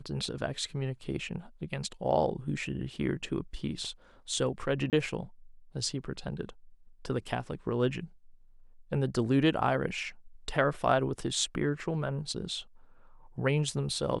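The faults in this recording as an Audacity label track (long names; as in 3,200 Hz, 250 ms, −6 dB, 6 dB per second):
4.900000	4.930000	drop-out 28 ms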